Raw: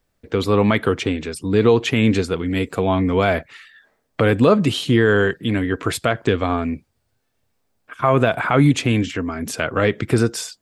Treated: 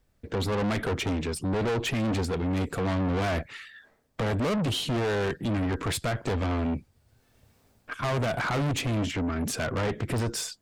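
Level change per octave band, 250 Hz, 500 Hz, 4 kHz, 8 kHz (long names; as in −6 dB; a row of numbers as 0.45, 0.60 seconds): −10.0, −11.5, −6.5, −4.5 decibels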